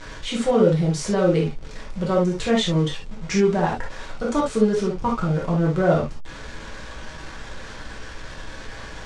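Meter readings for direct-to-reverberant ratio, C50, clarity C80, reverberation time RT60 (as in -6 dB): -3.5 dB, 5.5 dB, 28.0 dB, not exponential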